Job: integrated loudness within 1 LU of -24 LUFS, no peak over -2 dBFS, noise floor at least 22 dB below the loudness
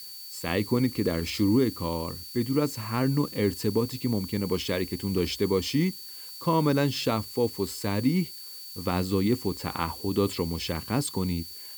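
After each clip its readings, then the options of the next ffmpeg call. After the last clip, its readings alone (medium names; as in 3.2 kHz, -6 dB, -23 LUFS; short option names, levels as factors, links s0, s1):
steady tone 4.5 kHz; tone level -43 dBFS; noise floor -42 dBFS; noise floor target -50 dBFS; loudness -27.5 LUFS; peak level -10.5 dBFS; loudness target -24.0 LUFS
-> -af "bandreject=f=4500:w=30"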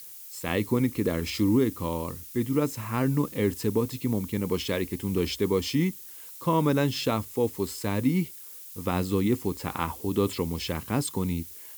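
steady tone not found; noise floor -44 dBFS; noise floor target -50 dBFS
-> -af "afftdn=nr=6:nf=-44"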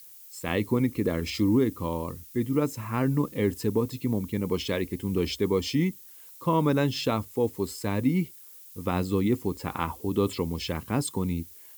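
noise floor -49 dBFS; noise floor target -50 dBFS
-> -af "afftdn=nr=6:nf=-49"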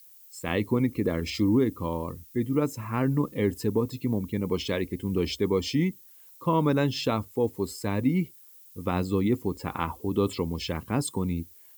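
noise floor -52 dBFS; loudness -28.0 LUFS; peak level -11.0 dBFS; loudness target -24.0 LUFS
-> -af "volume=1.58"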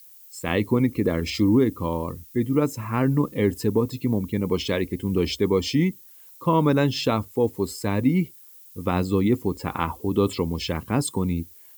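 loudness -24.0 LUFS; peak level -7.0 dBFS; noise floor -49 dBFS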